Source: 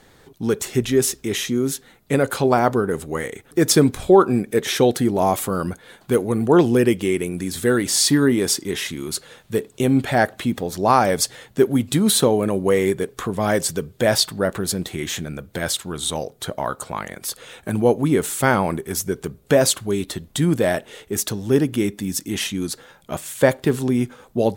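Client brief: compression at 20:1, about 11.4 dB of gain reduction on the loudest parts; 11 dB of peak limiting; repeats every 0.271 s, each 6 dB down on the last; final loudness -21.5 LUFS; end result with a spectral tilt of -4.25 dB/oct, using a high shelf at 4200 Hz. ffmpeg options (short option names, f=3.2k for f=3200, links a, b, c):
-af "highshelf=f=4.2k:g=5.5,acompressor=threshold=-20dB:ratio=20,alimiter=limit=-19.5dB:level=0:latency=1,aecho=1:1:271|542|813|1084|1355|1626:0.501|0.251|0.125|0.0626|0.0313|0.0157,volume=7dB"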